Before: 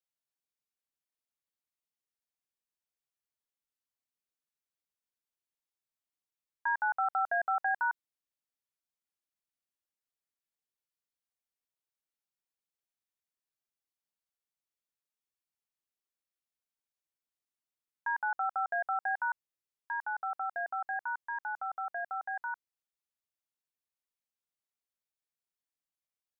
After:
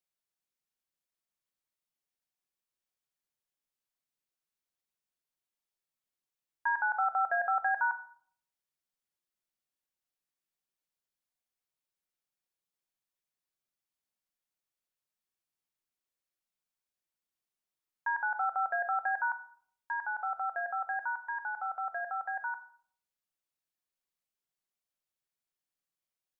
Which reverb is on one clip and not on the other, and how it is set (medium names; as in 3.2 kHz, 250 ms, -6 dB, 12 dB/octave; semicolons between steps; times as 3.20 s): simulated room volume 970 m³, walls furnished, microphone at 1 m